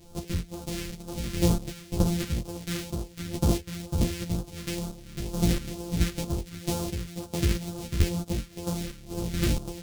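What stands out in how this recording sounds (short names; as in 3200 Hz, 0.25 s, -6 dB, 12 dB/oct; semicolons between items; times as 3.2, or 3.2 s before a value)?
a buzz of ramps at a fixed pitch in blocks of 256 samples; phasing stages 2, 2.1 Hz, lowest notch 760–1900 Hz; chopped level 1.5 Hz, depth 65%, duty 35%; a shimmering, thickened sound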